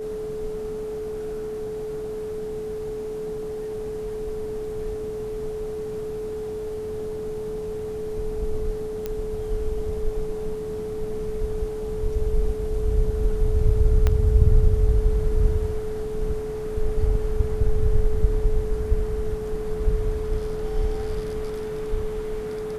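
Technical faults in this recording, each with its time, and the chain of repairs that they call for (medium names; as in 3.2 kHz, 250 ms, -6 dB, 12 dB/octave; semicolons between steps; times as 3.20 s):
whine 430 Hz -28 dBFS
9.06 s: pop -15 dBFS
14.07 s: pop -9 dBFS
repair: de-click; band-stop 430 Hz, Q 30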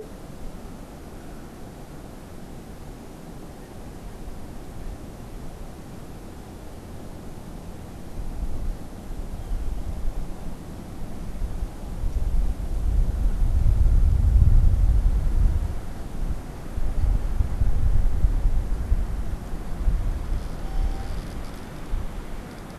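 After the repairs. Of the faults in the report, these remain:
14.07 s: pop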